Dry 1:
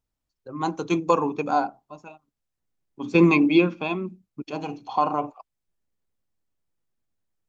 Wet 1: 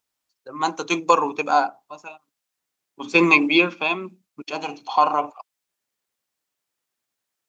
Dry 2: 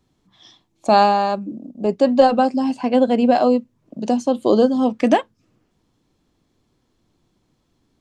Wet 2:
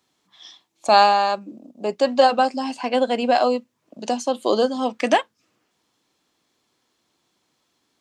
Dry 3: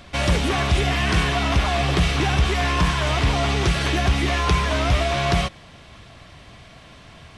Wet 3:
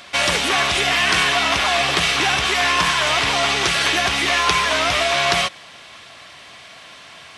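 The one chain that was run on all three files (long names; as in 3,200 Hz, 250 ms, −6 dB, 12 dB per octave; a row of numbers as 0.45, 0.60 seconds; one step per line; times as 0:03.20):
high-pass filter 1,200 Hz 6 dB per octave
normalise the peak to −1.5 dBFS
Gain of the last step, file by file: +9.5, +5.0, +9.0 decibels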